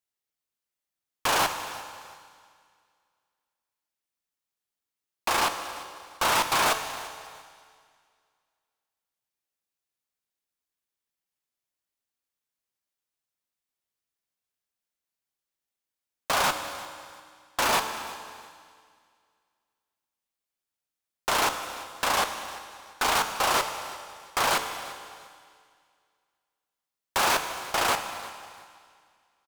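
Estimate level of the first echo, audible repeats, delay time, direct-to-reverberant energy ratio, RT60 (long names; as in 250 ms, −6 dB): −18.5 dB, 2, 345 ms, 6.5 dB, 2.0 s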